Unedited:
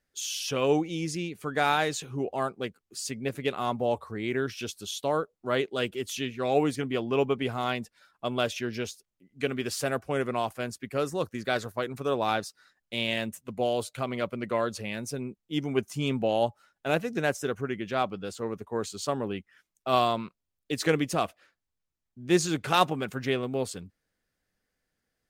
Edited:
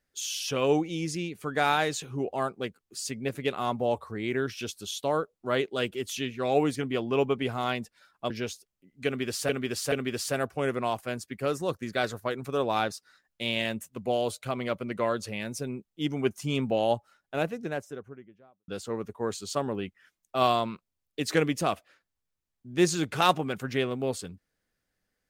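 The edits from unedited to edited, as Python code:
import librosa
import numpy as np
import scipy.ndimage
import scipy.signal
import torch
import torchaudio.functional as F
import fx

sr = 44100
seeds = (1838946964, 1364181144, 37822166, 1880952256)

y = fx.studio_fade_out(x, sr, start_s=16.43, length_s=1.77)
y = fx.edit(y, sr, fx.cut(start_s=8.3, length_s=0.38),
    fx.repeat(start_s=9.44, length_s=0.43, count=3), tone=tone)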